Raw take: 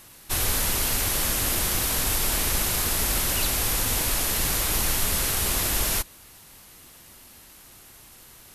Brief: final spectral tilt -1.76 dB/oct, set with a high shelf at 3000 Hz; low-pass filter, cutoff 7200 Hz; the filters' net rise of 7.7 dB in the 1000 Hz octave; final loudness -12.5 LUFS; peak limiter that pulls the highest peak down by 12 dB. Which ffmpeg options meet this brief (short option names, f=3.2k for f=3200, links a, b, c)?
-af "lowpass=7.2k,equalizer=f=1k:t=o:g=8.5,highshelf=f=3k:g=8.5,volume=15dB,alimiter=limit=-4.5dB:level=0:latency=1"